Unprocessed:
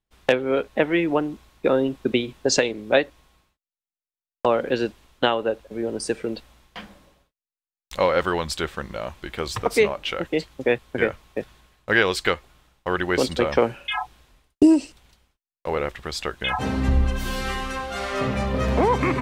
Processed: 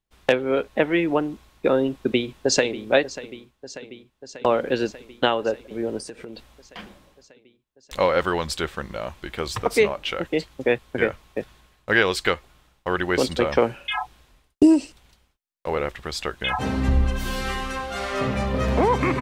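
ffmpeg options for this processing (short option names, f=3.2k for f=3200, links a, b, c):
-filter_complex "[0:a]asplit=2[a][b];[b]afade=t=in:st=1.98:d=0.01,afade=t=out:st=2.86:d=0.01,aecho=0:1:590|1180|1770|2360|2950|3540|4130|4720|5310|5900:0.16788|0.12591|0.0944327|0.0708245|0.0531184|0.0398388|0.0298791|0.0224093|0.016807|0.0126052[c];[a][c]amix=inputs=2:normalize=0,asettb=1/sr,asplit=3[d][e][f];[d]atrim=end=5.984[g];[e]atrim=start=5.98:end=6.79,asetpts=PTS-STARTPTS,afade=t=in:d=0.004:c=qsin,afade=t=out:st=0.806:d=0.004:c=qsin,acompressor=threshold=-33dB:ratio=8:attack=3.2:release=140:knee=1:detection=peak[h];[f]atrim=start=6.786[i];[g][h]acrossfade=d=0.004:c1=hsin:c2=qsin[j];[j][i]acrossfade=d=0.004:c1=qsin:c2=hsin"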